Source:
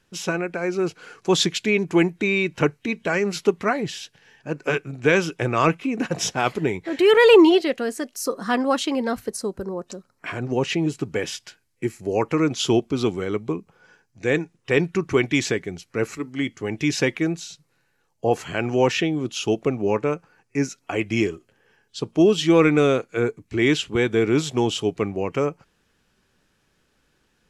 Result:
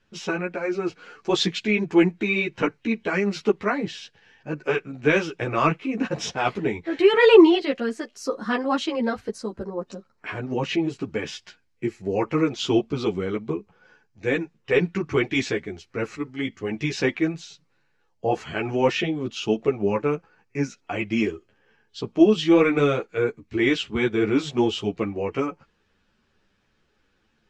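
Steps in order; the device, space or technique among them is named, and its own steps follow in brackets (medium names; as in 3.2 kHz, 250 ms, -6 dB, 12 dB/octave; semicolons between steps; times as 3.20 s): string-machine ensemble chorus (three-phase chorus; low-pass 4.8 kHz 12 dB/octave); trim +1.5 dB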